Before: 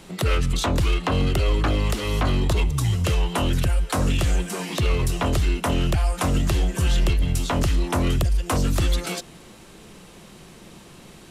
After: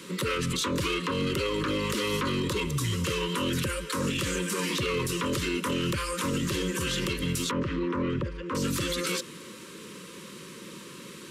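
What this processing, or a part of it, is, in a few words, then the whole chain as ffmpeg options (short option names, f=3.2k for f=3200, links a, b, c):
PA system with an anti-feedback notch: -filter_complex "[0:a]highpass=190,asuperstop=centerf=730:order=20:qfactor=2.1,alimiter=limit=-23.5dB:level=0:latency=1:release=36,asettb=1/sr,asplit=3[a][b][c];[a]atrim=end=7.514[d];[b]atrim=start=7.51:end=8.55,asetpts=PTS-STARTPTS,afade=t=in:d=0.004:c=qsin,afade=t=out:st=1.036:d=0.004:c=qsin,lowpass=1.8k[e];[c]atrim=start=8.546[f];[d][e]acrossfade=d=0.004:c1=hsin:c2=qsin[g];[g][f]acrossfade=d=0.004:c1=qsin:c2=hsin,volume=3.5dB"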